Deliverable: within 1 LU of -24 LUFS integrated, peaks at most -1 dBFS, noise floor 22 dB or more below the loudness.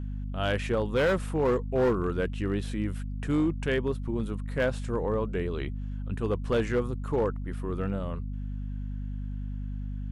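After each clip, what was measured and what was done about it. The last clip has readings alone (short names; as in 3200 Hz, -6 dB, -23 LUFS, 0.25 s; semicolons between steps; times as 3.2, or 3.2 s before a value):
clipped 1.3%; flat tops at -19.5 dBFS; hum 50 Hz; harmonics up to 250 Hz; hum level -31 dBFS; loudness -30.0 LUFS; peak -19.5 dBFS; loudness target -24.0 LUFS
-> clip repair -19.5 dBFS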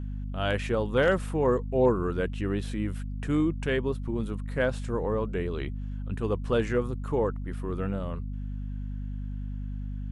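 clipped 0.0%; hum 50 Hz; harmonics up to 250 Hz; hum level -31 dBFS
-> de-hum 50 Hz, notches 5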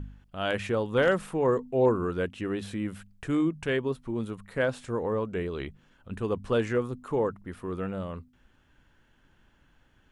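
hum none; loudness -29.5 LUFS; peak -11.0 dBFS; loudness target -24.0 LUFS
-> gain +5.5 dB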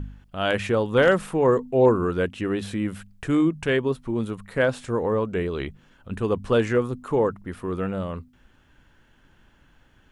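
loudness -24.0 LUFS; peak -5.5 dBFS; noise floor -59 dBFS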